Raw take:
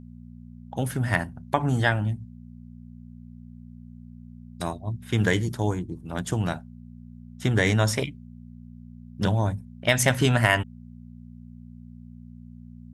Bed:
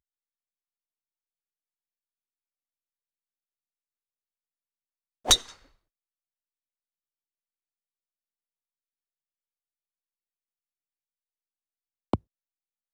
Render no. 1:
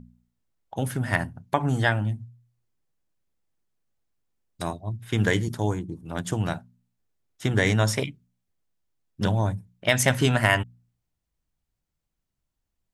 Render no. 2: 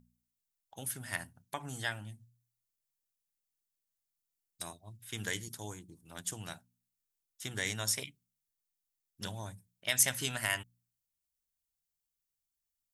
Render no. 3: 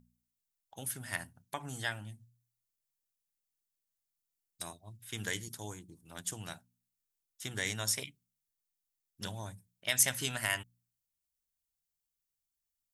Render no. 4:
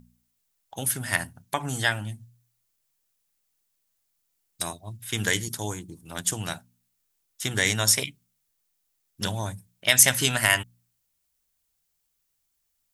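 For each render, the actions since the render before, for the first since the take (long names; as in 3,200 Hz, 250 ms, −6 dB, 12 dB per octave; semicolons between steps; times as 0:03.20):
hum removal 60 Hz, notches 4
first-order pre-emphasis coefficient 0.9
no processing that can be heard
level +12 dB; brickwall limiter −1 dBFS, peak gain reduction 2.5 dB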